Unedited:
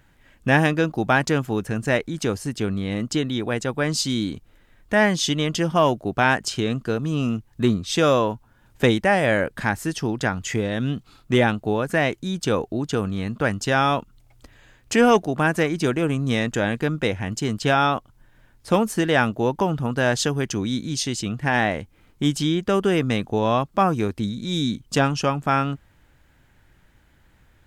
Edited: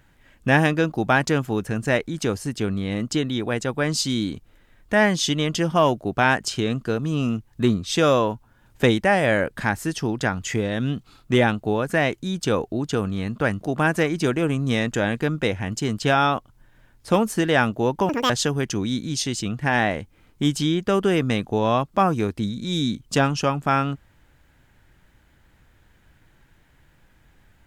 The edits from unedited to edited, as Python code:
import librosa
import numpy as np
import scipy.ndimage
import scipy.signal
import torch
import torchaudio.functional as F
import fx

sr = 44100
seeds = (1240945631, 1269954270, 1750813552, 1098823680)

y = fx.edit(x, sr, fx.cut(start_s=13.61, length_s=1.6),
    fx.speed_span(start_s=19.69, length_s=0.41, speed=1.98), tone=tone)